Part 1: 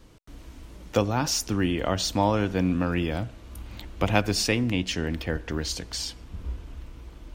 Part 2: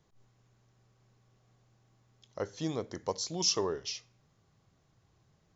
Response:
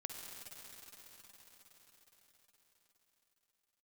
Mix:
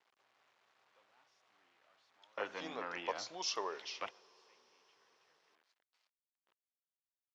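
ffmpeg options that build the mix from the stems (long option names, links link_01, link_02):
-filter_complex "[0:a]asoftclip=type=tanh:threshold=-19.5dB,volume=-6.5dB[link_01];[1:a]volume=-0.5dB,asplit=3[link_02][link_03][link_04];[link_03]volume=-16dB[link_05];[link_04]apad=whole_len=323774[link_06];[link_01][link_06]sidechaingate=range=-33dB:threshold=-53dB:ratio=16:detection=peak[link_07];[2:a]atrim=start_sample=2205[link_08];[link_05][link_08]afir=irnorm=-1:irlink=0[link_09];[link_07][link_02][link_09]amix=inputs=3:normalize=0,acrusher=bits=10:mix=0:aa=0.000001,highpass=780,lowpass=3100"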